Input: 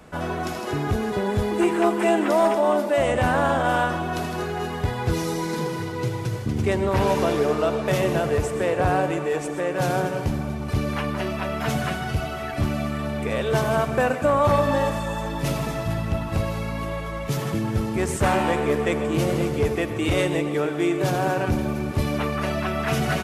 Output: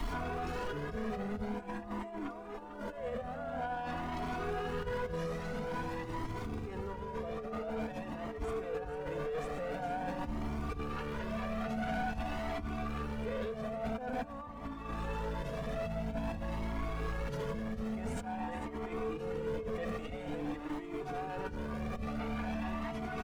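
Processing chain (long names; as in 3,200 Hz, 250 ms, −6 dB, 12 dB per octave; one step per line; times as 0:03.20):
background noise pink −39 dBFS
compressor whose output falls as the input rises −28 dBFS, ratio −0.5
low-pass filter 1,400 Hz 6 dB per octave
brickwall limiter −24.5 dBFS, peak gain reduction 11.5 dB
comb filter 4.2 ms, depth 70%
soft clipping −31 dBFS, distortion −12 dB
single-tap delay 447 ms −12 dB
flanger whose copies keep moving one way rising 0.48 Hz
level +2.5 dB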